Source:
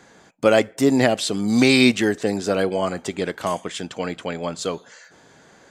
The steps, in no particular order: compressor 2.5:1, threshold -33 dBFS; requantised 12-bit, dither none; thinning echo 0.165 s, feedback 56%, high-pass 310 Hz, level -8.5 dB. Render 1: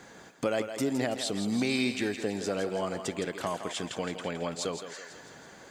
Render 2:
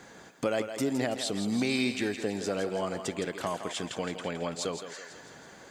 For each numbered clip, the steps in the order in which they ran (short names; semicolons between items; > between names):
compressor > requantised > thinning echo; compressor > thinning echo > requantised